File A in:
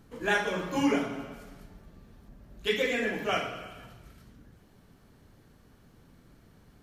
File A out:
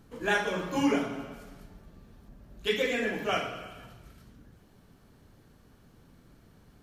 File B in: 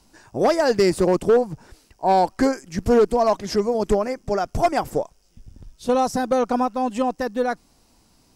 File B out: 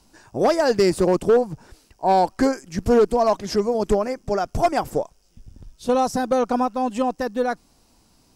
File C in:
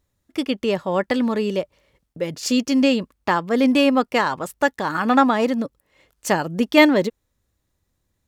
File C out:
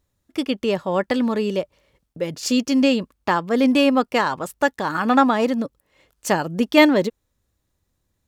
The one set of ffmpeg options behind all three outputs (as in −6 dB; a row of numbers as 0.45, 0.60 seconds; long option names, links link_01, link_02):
-af "equalizer=frequency=2000:width=4.6:gain=-2"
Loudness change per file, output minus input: 0.0, 0.0, 0.0 LU